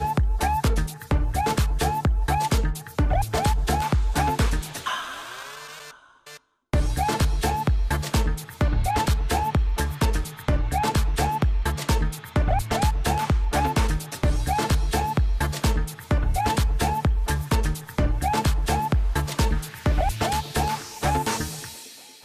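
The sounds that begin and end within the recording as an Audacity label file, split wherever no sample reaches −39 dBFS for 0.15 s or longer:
6.260000	6.370000	sound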